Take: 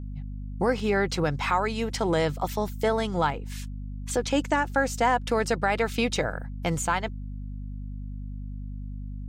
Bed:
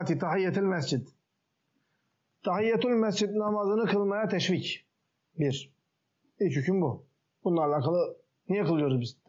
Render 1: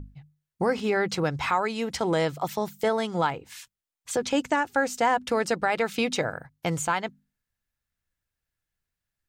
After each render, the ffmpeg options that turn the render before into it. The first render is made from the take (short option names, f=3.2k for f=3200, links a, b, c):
-af "bandreject=f=50:t=h:w=6,bandreject=f=100:t=h:w=6,bandreject=f=150:t=h:w=6,bandreject=f=200:t=h:w=6,bandreject=f=250:t=h:w=6"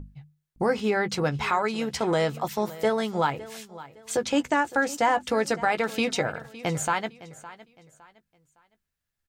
-filter_complex "[0:a]asplit=2[a][b];[b]adelay=14,volume=-10.5dB[c];[a][c]amix=inputs=2:normalize=0,aecho=1:1:561|1122|1683:0.133|0.0413|0.0128"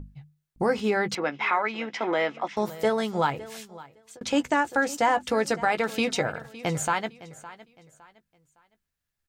-filter_complex "[0:a]asettb=1/sr,asplit=3[a][b][c];[a]atrim=end=1.154[d];[b]atrim=start=1.15:end=2.57,asetpts=PTS-STARTPTS,afade=t=in:d=0.004:c=qsin,afade=t=out:st=1.416:d=0.004:c=qsin,highpass=f=250:w=0.5412,highpass=f=250:w=1.3066,equalizer=f=430:t=q:w=4:g=-6,equalizer=f=2.1k:t=q:w=4:g=7,equalizer=f=4.3k:t=q:w=4:g=-10,lowpass=f=4.8k:w=0.5412,lowpass=f=4.8k:w=1.3066[e];[c]atrim=start=2.566[f];[d][e]acrossfade=d=0.004:c1=hsin:c2=qsin[g];[g][f]acrossfade=d=0.004:c1=qsin:c2=hsin,asplit=2[h][i];[h]atrim=end=4.21,asetpts=PTS-STARTPTS,afade=t=out:st=3.69:d=0.52[j];[i]atrim=start=4.21,asetpts=PTS-STARTPTS,afade=t=in:d=0.004:c=hsin[k];[j][k]concat=n=2:v=0:a=1"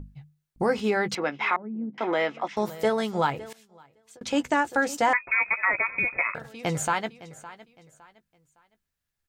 -filter_complex "[0:a]asettb=1/sr,asplit=3[a][b][c];[a]atrim=end=1.564[d];[b]atrim=start=1.56:end=1.98,asetpts=PTS-STARTPTS,afade=t=in:d=0.004:c=qsin,afade=t=out:st=0.416:d=0.004:c=qsin,lowpass=f=220:t=q:w=1.8[e];[c]atrim=start=1.976[f];[d][e]acrossfade=d=0.004:c1=hsin:c2=qsin[g];[g][f]acrossfade=d=0.004:c1=qsin:c2=hsin,asettb=1/sr,asplit=3[h][i][j];[h]atrim=end=5.134[k];[i]atrim=start=5.13:end=6.35,asetpts=PTS-STARTPTS,afade=t=in:d=0.004:c=qsin,afade=t=out:st=1.216:d=0.004:c=qsin,lowpass=f=2.3k:t=q:w=0.5098,lowpass=f=2.3k:t=q:w=0.6013,lowpass=f=2.3k:t=q:w=0.9,lowpass=f=2.3k:t=q:w=2.563,afreqshift=-2700[l];[j]atrim=start=6.346[m];[k][l]acrossfade=d=0.004:c1=hsin:c2=qsin[n];[n][m]acrossfade=d=0.004:c1=qsin:c2=hsin,asplit=2[o][p];[o]atrim=end=3.53,asetpts=PTS-STARTPTS,afade=t=out:st=3.526:d=0.004:c=hsin:silence=0.112202[q];[p]atrim=start=3.53,asetpts=PTS-STARTPTS,afade=t=in:d=0.98:silence=0.112202[r];[q][r]concat=n=2:v=0:a=1"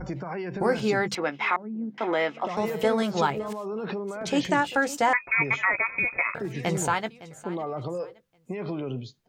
-filter_complex "[1:a]volume=-5.5dB[a];[0:a][a]amix=inputs=2:normalize=0"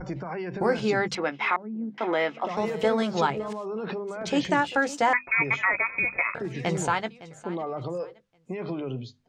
-af "lowpass=7.1k,bandreject=f=50:t=h:w=6,bandreject=f=100:t=h:w=6,bandreject=f=150:t=h:w=6,bandreject=f=200:t=h:w=6,bandreject=f=250:t=h:w=6"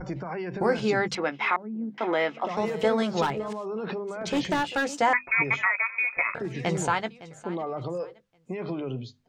-filter_complex "[0:a]asettb=1/sr,asplit=3[a][b][c];[a]atrim=end=3.224[d];[b]atrim=start=3.22:end=4.93,asetpts=PTS-STARTPTS,afade=t=in:d=0.004:c=qsin,afade=t=out:st=1.706:d=0.004:c=qsin,asoftclip=type=hard:threshold=-21dB[e];[c]atrim=start=4.926[f];[d][e]acrossfade=d=0.004:c1=hsin:c2=qsin[g];[g][f]acrossfade=d=0.004:c1=qsin:c2=hsin,asettb=1/sr,asplit=3[h][i][j];[h]atrim=end=5.674[k];[i]atrim=start=5.67:end=6.17,asetpts=PTS-STARTPTS,afade=t=in:d=0.004:c=qsin,afade=t=out:st=0.496:d=0.004:c=qsin,highpass=1k[l];[j]atrim=start=6.166[m];[k][l]acrossfade=d=0.004:c1=hsin:c2=qsin[n];[n][m]acrossfade=d=0.004:c1=qsin:c2=hsin"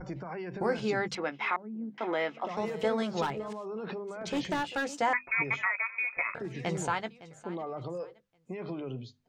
-af "volume=-5.5dB"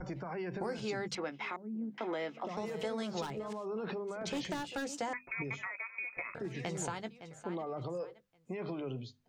-filter_complex "[0:a]acrossover=split=490|4300[a][b][c];[a]alimiter=level_in=9dB:limit=-24dB:level=0:latency=1:release=228,volume=-9dB[d];[b]acompressor=threshold=-40dB:ratio=6[e];[d][e][c]amix=inputs=3:normalize=0"